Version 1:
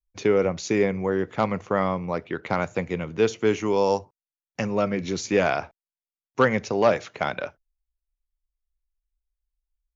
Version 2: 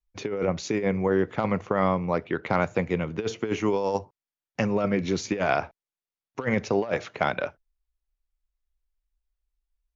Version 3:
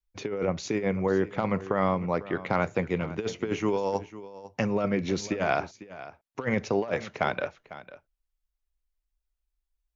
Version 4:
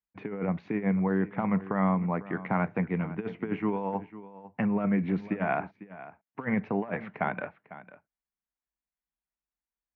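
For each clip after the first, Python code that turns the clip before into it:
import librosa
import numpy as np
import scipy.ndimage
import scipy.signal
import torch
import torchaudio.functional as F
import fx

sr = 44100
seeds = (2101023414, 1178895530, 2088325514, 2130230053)

y1 = fx.high_shelf(x, sr, hz=6700.0, db=-11.5)
y1 = fx.over_compress(y1, sr, threshold_db=-23.0, ratio=-0.5)
y2 = y1 + 10.0 ** (-16.0 / 20.0) * np.pad(y1, (int(500 * sr / 1000.0), 0))[:len(y1)]
y2 = y2 * librosa.db_to_amplitude(-2.0)
y3 = fx.cabinet(y2, sr, low_hz=140.0, low_slope=12, high_hz=2100.0, hz=(190.0, 380.0, 540.0, 1300.0), db=(6, -6, -9, -4))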